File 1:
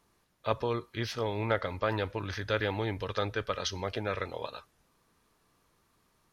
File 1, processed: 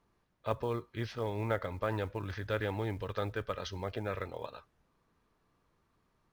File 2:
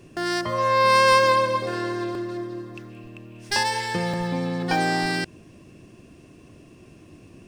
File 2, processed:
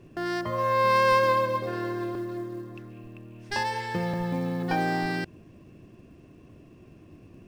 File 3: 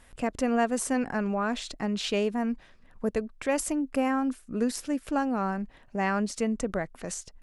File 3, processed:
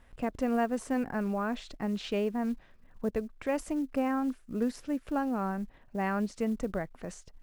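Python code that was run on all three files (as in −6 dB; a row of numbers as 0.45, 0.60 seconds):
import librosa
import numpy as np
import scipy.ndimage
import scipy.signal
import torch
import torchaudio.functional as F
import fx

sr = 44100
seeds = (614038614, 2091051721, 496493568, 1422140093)

y = fx.lowpass(x, sr, hz=2200.0, slope=6)
y = fx.low_shelf(y, sr, hz=170.0, db=3.0)
y = fx.quant_float(y, sr, bits=4)
y = y * librosa.db_to_amplitude(-3.5)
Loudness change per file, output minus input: −3.5, −4.5, −3.5 LU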